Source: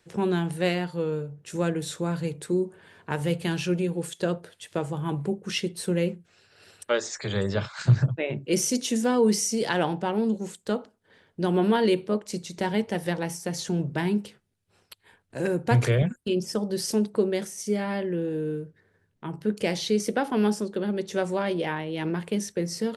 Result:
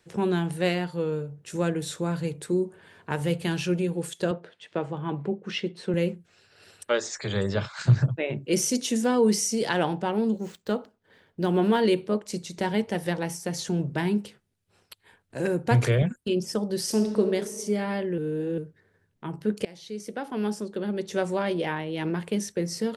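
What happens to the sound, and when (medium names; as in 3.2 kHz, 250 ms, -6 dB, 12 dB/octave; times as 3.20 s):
4.31–5.94 s: band-pass 160–3400 Hz
10.22–11.80 s: median filter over 5 samples
16.80–17.22 s: reverb throw, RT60 1.6 s, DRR 5 dB
18.18–18.58 s: reverse
19.65–21.18 s: fade in, from -22.5 dB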